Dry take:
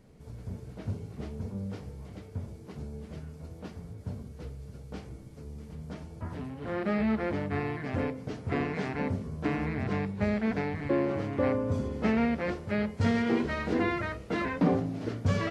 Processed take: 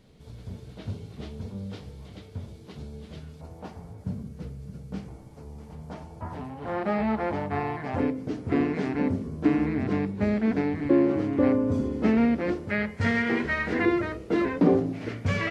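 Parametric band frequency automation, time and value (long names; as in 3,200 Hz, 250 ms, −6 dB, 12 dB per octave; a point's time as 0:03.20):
parametric band +10.5 dB 0.83 octaves
3,600 Hz
from 0:03.41 830 Hz
from 0:04.04 180 Hz
from 0:05.08 840 Hz
from 0:08.00 300 Hz
from 0:12.70 1,900 Hz
from 0:13.85 360 Hz
from 0:14.93 2,200 Hz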